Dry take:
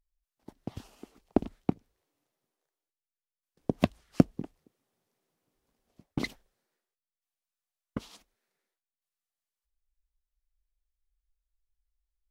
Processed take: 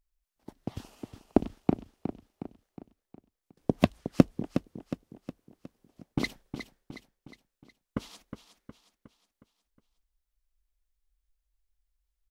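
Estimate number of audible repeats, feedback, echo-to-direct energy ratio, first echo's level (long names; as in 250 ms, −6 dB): 5, 49%, −8.5 dB, −9.5 dB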